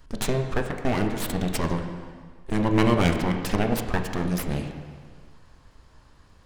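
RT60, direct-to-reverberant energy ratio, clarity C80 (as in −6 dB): 1.7 s, 4.5 dB, 7.5 dB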